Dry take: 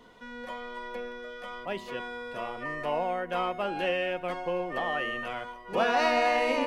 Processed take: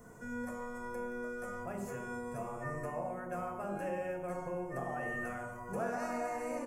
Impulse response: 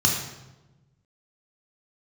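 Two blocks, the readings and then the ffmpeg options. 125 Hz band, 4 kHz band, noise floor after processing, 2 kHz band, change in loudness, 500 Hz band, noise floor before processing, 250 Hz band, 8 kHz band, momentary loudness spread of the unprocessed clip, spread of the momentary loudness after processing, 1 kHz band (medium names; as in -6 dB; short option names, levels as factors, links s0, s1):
+2.0 dB, under -25 dB, -45 dBFS, -10.5 dB, -9.0 dB, -8.5 dB, -45 dBFS, -4.0 dB, no reading, 15 LU, 4 LU, -10.5 dB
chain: -filter_complex "[0:a]firequalizer=gain_entry='entry(830,0);entry(3700,-26);entry(7200,9)':delay=0.05:min_phase=1,acompressor=threshold=0.00794:ratio=2.5,asplit=2[s0][s1];[1:a]atrim=start_sample=2205[s2];[s1][s2]afir=irnorm=-1:irlink=0,volume=0.188[s3];[s0][s3]amix=inputs=2:normalize=0,volume=1.26"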